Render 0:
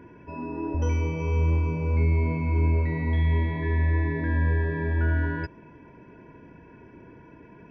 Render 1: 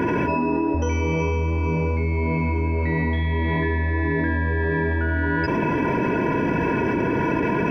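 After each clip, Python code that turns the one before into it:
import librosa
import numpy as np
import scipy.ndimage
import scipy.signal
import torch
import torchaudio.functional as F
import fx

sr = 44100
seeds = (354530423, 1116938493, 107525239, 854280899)

y = fx.low_shelf(x, sr, hz=120.0, db=-10.5)
y = fx.env_flatten(y, sr, amount_pct=100)
y = F.gain(torch.from_numpy(y), 4.0).numpy()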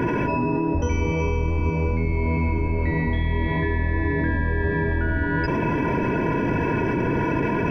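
y = fx.octave_divider(x, sr, octaves=1, level_db=-3.0)
y = F.gain(torch.from_numpy(y), -1.5).numpy()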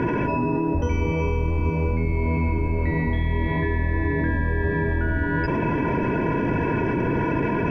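y = fx.air_absorb(x, sr, metres=110.0)
y = fx.quant_dither(y, sr, seeds[0], bits=12, dither='triangular')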